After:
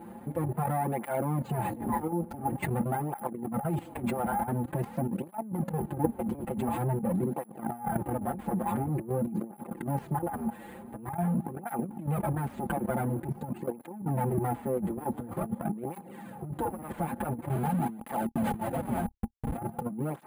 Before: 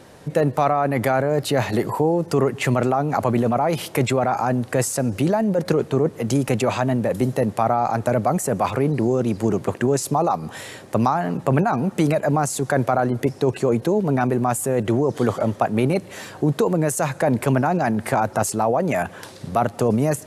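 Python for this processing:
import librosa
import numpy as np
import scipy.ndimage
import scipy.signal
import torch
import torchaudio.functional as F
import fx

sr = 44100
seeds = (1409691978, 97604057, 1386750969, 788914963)

y = fx.lower_of_two(x, sr, delay_ms=5.8)
y = scipy.signal.sosfilt(scipy.signal.butter(4, 40.0, 'highpass', fs=sr, output='sos'), y)
y = fx.schmitt(y, sr, flips_db=-28.5, at=(17.49, 19.58))
y = fx.spacing_loss(y, sr, db_at_10k=44)
y = fx.small_body(y, sr, hz=(230.0, 820.0), ring_ms=60, db=15)
y = fx.level_steps(y, sr, step_db=16)
y = np.repeat(scipy.signal.resample_poly(y, 1, 4), 4)[:len(y)]
y = fx.over_compress(y, sr, threshold_db=-25.0, ratio=-0.5)
y = fx.flanger_cancel(y, sr, hz=0.47, depth_ms=7.8)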